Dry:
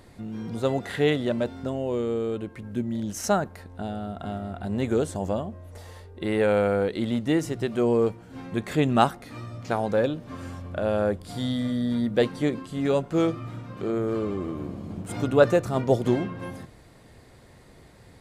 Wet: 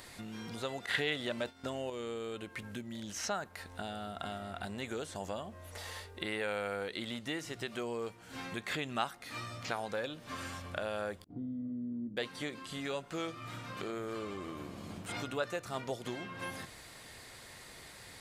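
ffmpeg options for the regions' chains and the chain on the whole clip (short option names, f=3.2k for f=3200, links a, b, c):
-filter_complex "[0:a]asettb=1/sr,asplit=3[a][b][c];[a]atrim=end=0.864[d];[b]atrim=start=0.86:end=1.9,asetpts=PTS-STARTPTS,afade=t=in:d=0.004:c=qsin,afade=t=out:st=1.036:d=0.004:c=qsin,agate=range=-33dB:threshold=-31dB:ratio=3:release=100:detection=peak,acontrast=72[e];[c]atrim=start=1.896[f];[d][e]acrossfade=d=0.004:c1=hsin:c2=qsin[g];[g][f]acrossfade=d=0.004:c1=qsin:c2=hsin,asettb=1/sr,asplit=3[h][i][j];[h]atrim=end=11.244[k];[i]atrim=start=11.24:end=12.17,asetpts=PTS-STARTPTS,afade=t=in:d=0.004:c=qsin,afade=t=out:st=0.926:d=0.004:c=qsin,lowpass=f=300:t=q:w=2.8,aemphasis=mode=reproduction:type=cd,agate=range=-33dB:threshold=-30dB:ratio=3:release=100:detection=peak[l];[j]atrim=start=12.166[m];[k][l]acrossfade=d=0.004:c1=hsin:c2=qsin[n];[n][m]acrossfade=d=0.004:c1=qsin:c2=hsin,acompressor=threshold=-36dB:ratio=3,tiltshelf=f=880:g=-9,acrossover=split=4600[o][p];[p]acompressor=threshold=-51dB:ratio=4:attack=1:release=60[q];[o][q]amix=inputs=2:normalize=0,volume=1dB"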